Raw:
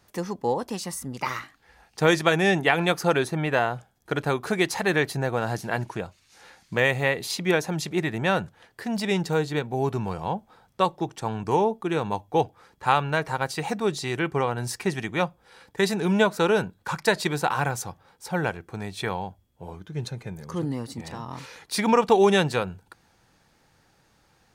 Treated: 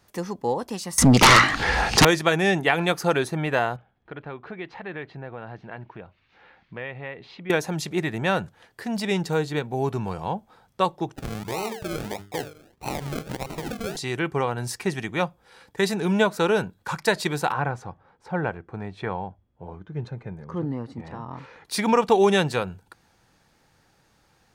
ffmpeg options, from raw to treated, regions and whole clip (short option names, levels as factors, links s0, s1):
-filter_complex "[0:a]asettb=1/sr,asplit=3[s0][s1][s2];[s0]atrim=end=0.984[s3];[s1]atrim=start=0.98:end=2.05,asetpts=PTS-STARTPTS,afade=t=in:d=0.004:c=qsin,afade=t=out:st=1.066:d=0.004:c=qsin,lowpass=6400,acompressor=mode=upward:threshold=0.02:ratio=2.5:attack=3.2:release=140:knee=2.83:detection=peak,aeval=exprs='0.376*sin(PI/2*10*val(0)/0.376)':c=same[s4];[s2]atrim=start=2.046[s5];[s3][s4]acrossfade=d=0.004:c1=hsin:c2=qsin[s6];[s6][s5]acrossfade=d=0.004:c1=qsin:c2=hsin,asettb=1/sr,asplit=3[s7][s8][s9];[s7]atrim=end=3.764[s10];[s8]atrim=start=3.76:end=7.5,asetpts=PTS-STARTPTS,afade=t=in:d=0.004:c=qsin,afade=t=out:st=3.736:d=0.004:c=qsin,lowpass=f=3100:w=0.5412,lowpass=f=3100:w=1.3066,acompressor=threshold=0.00224:ratio=1.5:attack=3.2:release=140:knee=1:detection=peak[s11];[s9]atrim=start=7.496[s12];[s10][s11]acrossfade=d=0.004:c1=hsin:c2=qsin[s13];[s13][s12]acrossfade=d=0.004:c1=qsin:c2=hsin,asettb=1/sr,asplit=3[s14][s15][s16];[s14]atrim=end=11.154[s17];[s15]atrim=start=11.15:end=13.97,asetpts=PTS-STARTPTS,afade=t=in:d=0.004:c=qsin,afade=t=out:st=2.816:d=0.004:c=qsin,bandreject=f=50:t=h:w=6,bandreject=f=100:t=h:w=6,bandreject=f=150:t=h:w=6,bandreject=f=200:t=h:w=6,bandreject=f=250:t=h:w=6,bandreject=f=300:t=h:w=6,bandreject=f=350:t=h:w=6,bandreject=f=400:t=h:w=6,bandreject=f=450:t=h:w=6,acrusher=samples=37:mix=1:aa=0.000001:lfo=1:lforange=22.2:lforate=1.6,acompressor=threshold=0.0447:ratio=3:attack=3.2:release=140:knee=1:detection=peak[s18];[s16]atrim=start=13.966[s19];[s17][s18]acrossfade=d=0.004:c1=hsin:c2=qsin[s20];[s20][s19]acrossfade=d=0.004:c1=qsin:c2=hsin,asettb=1/sr,asplit=3[s21][s22][s23];[s21]atrim=end=17.524[s24];[s22]atrim=start=17.52:end=21.65,asetpts=PTS-STARTPTS,afade=t=in:d=0.004:c=qsin,afade=t=out:st=4.126:d=0.004:c=qsin,lowpass=1600,aemphasis=mode=production:type=50kf[s25];[s23]atrim=start=21.646[s26];[s24][s25]acrossfade=d=0.004:c1=hsin:c2=qsin[s27];[s27][s26]acrossfade=d=0.004:c1=qsin:c2=hsin"